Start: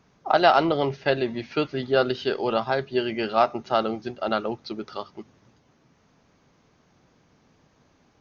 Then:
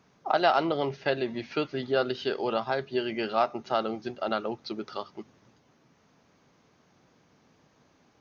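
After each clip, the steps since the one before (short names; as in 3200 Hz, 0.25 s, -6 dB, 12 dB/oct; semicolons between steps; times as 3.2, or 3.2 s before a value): in parallel at 0 dB: compressor, threshold -28 dBFS, peak gain reduction 15 dB; on the sum: HPF 120 Hz 6 dB/oct; gain -7 dB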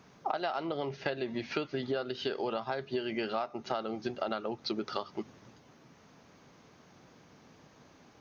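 compressor 10:1, threshold -35 dBFS, peak gain reduction 17.5 dB; gain +5 dB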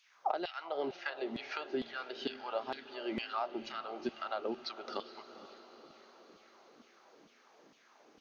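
LFO high-pass saw down 2.2 Hz 220–3300 Hz; diffused feedback echo 0.491 s, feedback 58%, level -13.5 dB; gain -5.5 dB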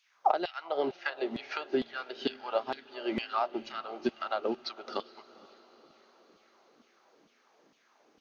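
upward expander 1.5:1, over -52 dBFS; gain +8.5 dB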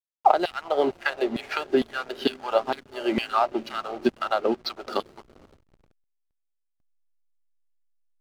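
backlash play -45 dBFS; gain +8 dB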